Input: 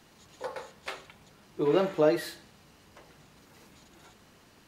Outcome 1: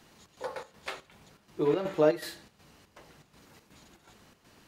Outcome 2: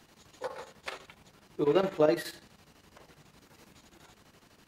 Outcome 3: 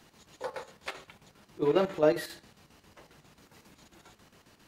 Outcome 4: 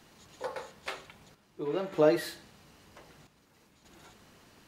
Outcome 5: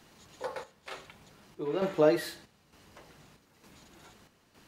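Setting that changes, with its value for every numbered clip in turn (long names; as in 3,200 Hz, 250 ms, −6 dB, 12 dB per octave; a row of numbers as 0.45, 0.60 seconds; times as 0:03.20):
square-wave tremolo, speed: 2.7, 12, 7.4, 0.52, 1.1 Hertz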